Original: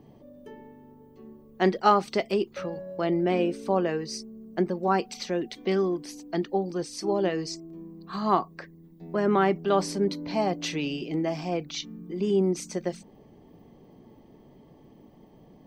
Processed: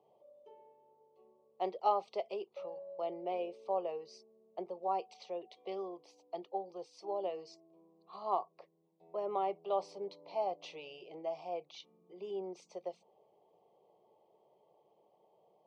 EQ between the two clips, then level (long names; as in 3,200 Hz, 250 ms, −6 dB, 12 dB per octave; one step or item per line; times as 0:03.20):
band-pass filter 480–2,400 Hz
parametric band 1,800 Hz −10 dB 0.43 octaves
phaser with its sweep stopped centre 640 Hz, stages 4
−5.5 dB